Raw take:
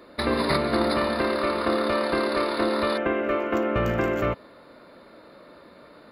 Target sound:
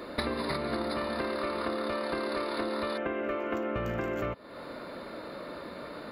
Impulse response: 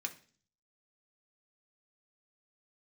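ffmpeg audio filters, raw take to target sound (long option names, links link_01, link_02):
-af "acompressor=threshold=-37dB:ratio=10,volume=7.5dB"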